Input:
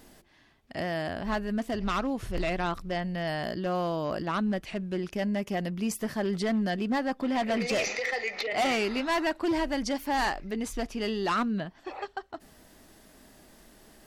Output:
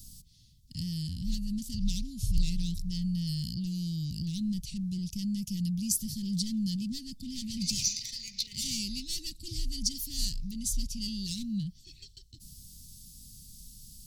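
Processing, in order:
in parallel at −11.5 dB: hard clipping −35 dBFS, distortion −6 dB
on the sum: inverse Chebyshev band-stop filter 560–1,300 Hz, stop band 80 dB
level +7.5 dB

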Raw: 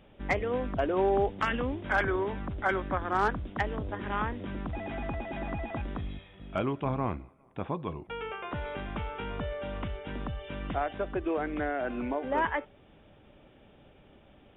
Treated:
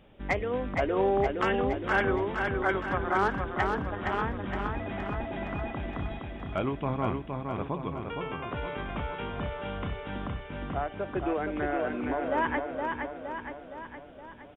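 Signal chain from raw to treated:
0:10.28–0:11.11: high-frequency loss of the air 380 metres
repeating echo 466 ms, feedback 56%, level −4.5 dB

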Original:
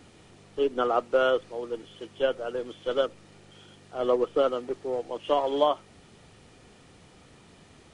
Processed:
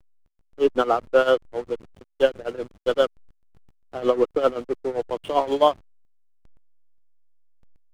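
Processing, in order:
amplitude tremolo 7.6 Hz, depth 80%
slack as between gear wheels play −37.5 dBFS
level +8 dB

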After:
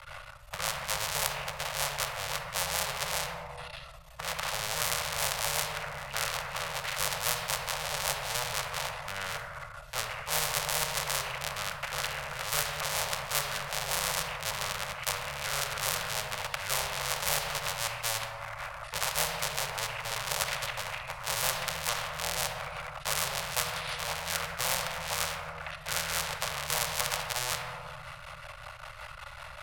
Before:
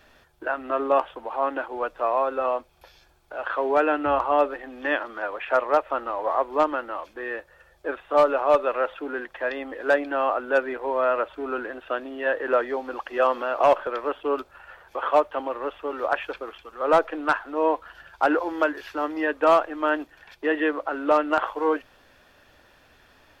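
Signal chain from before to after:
sub-harmonics by changed cycles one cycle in 3, muted
Chebyshev band-stop filter 190–720 Hz, order 4
in parallel at +2.5 dB: speech leveller 2 s
on the sum: rotating-speaker cabinet horn 6.7 Hz
speed change −21%
on a send at −8 dB: convolution reverb RT60 1.1 s, pre-delay 3 ms
on the sum: every bin compressed towards the loudest bin 4 to 1

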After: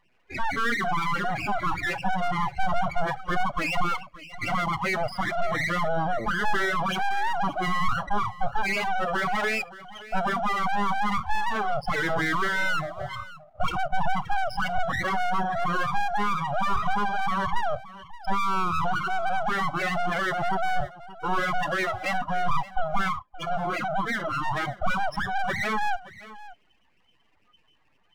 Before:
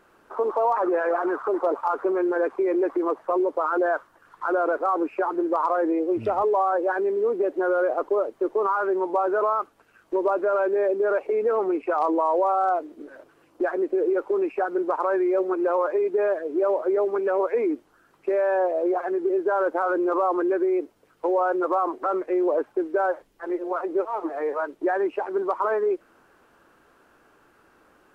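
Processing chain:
mid-hump overdrive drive 29 dB, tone 1,600 Hz, clips at −13 dBFS
spectral peaks only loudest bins 8
full-wave rectification
noise reduction from a noise print of the clip's start 19 dB
single-tap delay 573 ms −17.5 dB

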